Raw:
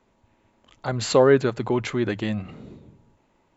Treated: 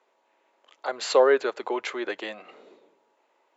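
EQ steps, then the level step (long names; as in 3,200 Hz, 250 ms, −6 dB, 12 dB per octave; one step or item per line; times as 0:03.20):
high-pass filter 420 Hz 24 dB per octave
high-frequency loss of the air 53 metres
0.0 dB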